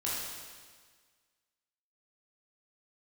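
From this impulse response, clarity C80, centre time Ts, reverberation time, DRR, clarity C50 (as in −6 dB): 1.0 dB, 105 ms, 1.6 s, −7.5 dB, −2.0 dB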